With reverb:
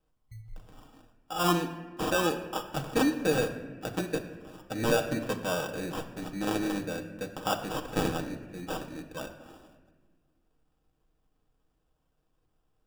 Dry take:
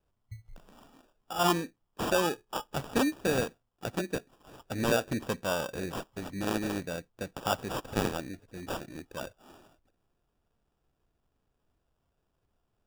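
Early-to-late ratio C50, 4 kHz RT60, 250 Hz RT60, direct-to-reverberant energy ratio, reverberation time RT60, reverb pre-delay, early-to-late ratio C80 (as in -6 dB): 9.5 dB, 0.90 s, 2.1 s, 3.5 dB, 1.5 s, 4 ms, 11.0 dB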